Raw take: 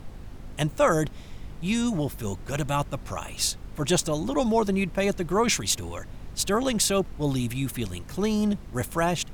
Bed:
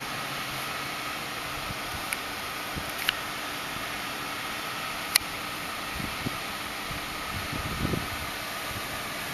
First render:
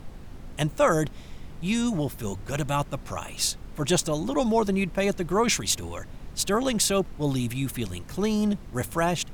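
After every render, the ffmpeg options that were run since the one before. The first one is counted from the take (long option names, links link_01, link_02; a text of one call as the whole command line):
ffmpeg -i in.wav -af "bandreject=frequency=50:width_type=h:width=4,bandreject=frequency=100:width_type=h:width=4" out.wav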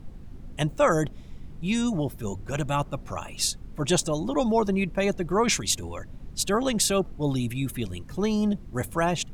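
ffmpeg -i in.wav -af "afftdn=noise_reduction=9:noise_floor=-42" out.wav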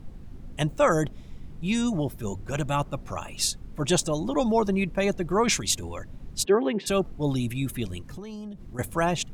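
ffmpeg -i in.wav -filter_complex "[0:a]asplit=3[link_01][link_02][link_03];[link_01]afade=type=out:start_time=6.44:duration=0.02[link_04];[link_02]highpass=frequency=200:width=0.5412,highpass=frequency=200:width=1.3066,equalizer=frequency=390:width_type=q:width=4:gain=10,equalizer=frequency=570:width_type=q:width=4:gain=-6,equalizer=frequency=1300:width_type=q:width=4:gain=-7,lowpass=frequency=2600:width=0.5412,lowpass=frequency=2600:width=1.3066,afade=type=in:start_time=6.44:duration=0.02,afade=type=out:start_time=6.86:duration=0.02[link_05];[link_03]afade=type=in:start_time=6.86:duration=0.02[link_06];[link_04][link_05][link_06]amix=inputs=3:normalize=0,asettb=1/sr,asplit=3[link_07][link_08][link_09];[link_07]atrim=end=8.004[link_10];[link_08]atrim=start=8:end=8.79,asetpts=PTS-STARTPTS,afade=type=in:duration=0.004:curve=qsin,afade=type=out:start_time=0.786:duration=0.004:curve=qsin,acompressor=threshold=-34dB:ratio=20:attack=3.2:release=140:knee=1:detection=peak[link_11];[link_09]atrim=start=8.786[link_12];[link_10][link_11]acrossfade=duration=0.004:curve1=hsin:curve2=qsin[link_13];[link_13][link_12]acrossfade=duration=0.004:curve1=qsin:curve2=hsin" out.wav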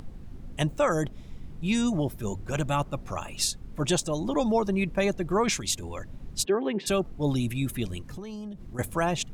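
ffmpeg -i in.wav -af "acompressor=mode=upward:threshold=-40dB:ratio=2.5,alimiter=limit=-15dB:level=0:latency=1:release=325" out.wav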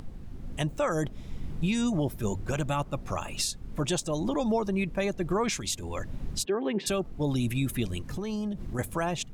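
ffmpeg -i in.wav -af "dynaudnorm=framelen=360:gausssize=3:maxgain=6dB,alimiter=limit=-19dB:level=0:latency=1:release=493" out.wav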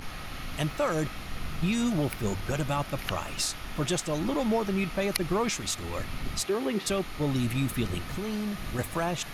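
ffmpeg -i in.wav -i bed.wav -filter_complex "[1:a]volume=-9dB[link_01];[0:a][link_01]amix=inputs=2:normalize=0" out.wav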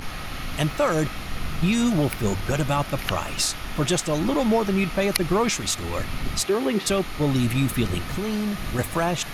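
ffmpeg -i in.wav -af "volume=6dB" out.wav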